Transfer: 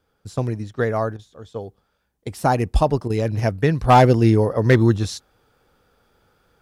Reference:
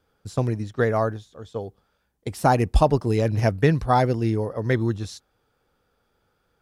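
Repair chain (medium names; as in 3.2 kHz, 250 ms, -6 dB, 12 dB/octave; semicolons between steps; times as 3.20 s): clip repair -6 dBFS; interpolate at 1.17/3.08 s, 18 ms; trim 0 dB, from 3.84 s -8 dB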